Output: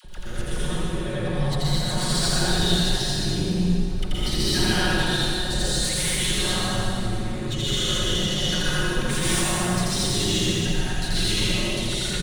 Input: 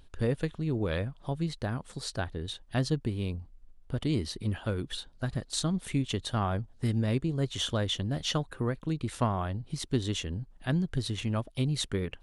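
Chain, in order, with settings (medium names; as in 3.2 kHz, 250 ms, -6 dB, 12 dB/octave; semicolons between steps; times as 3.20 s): comb 5.5 ms, depth 78%; peak limiter -25 dBFS, peak gain reduction 10.5 dB; compressor with a negative ratio -39 dBFS, ratio -0.5; saturation -32.5 dBFS, distortion -14 dB; phase dispersion lows, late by 48 ms, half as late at 790 Hz; on a send: loudspeakers at several distances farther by 29 m -1 dB, 69 m -9 dB; on the sum: plate-style reverb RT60 2.7 s, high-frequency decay 0.9×, pre-delay 110 ms, DRR -9.5 dB; trim +6.5 dB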